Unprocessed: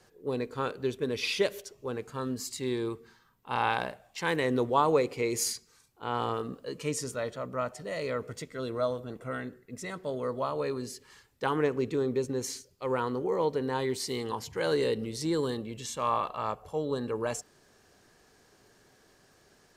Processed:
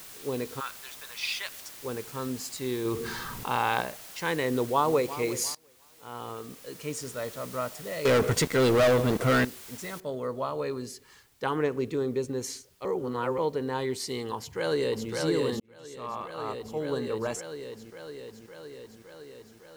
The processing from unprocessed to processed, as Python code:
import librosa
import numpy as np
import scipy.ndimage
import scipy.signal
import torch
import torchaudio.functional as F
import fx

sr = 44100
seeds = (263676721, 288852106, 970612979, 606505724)

y = fx.highpass(x, sr, hz=1000.0, slope=24, at=(0.59, 1.79), fade=0.02)
y = fx.env_flatten(y, sr, amount_pct=70, at=(2.85, 3.81))
y = fx.echo_throw(y, sr, start_s=4.51, length_s=0.54, ms=350, feedback_pct=45, wet_db=-14.0)
y = fx.leveller(y, sr, passes=5, at=(8.05, 9.45))
y = fx.noise_floor_step(y, sr, seeds[0], at_s=10.0, before_db=-46, after_db=-66, tilt_db=0.0)
y = fx.echo_throw(y, sr, start_s=14.36, length_s=0.74, ms=560, feedback_pct=75, wet_db=-2.0)
y = fx.edit(y, sr, fx.fade_in_from(start_s=5.55, length_s=1.93, floor_db=-22.5),
    fx.reverse_span(start_s=12.85, length_s=0.53),
    fx.fade_in_span(start_s=15.6, length_s=1.34), tone=tone)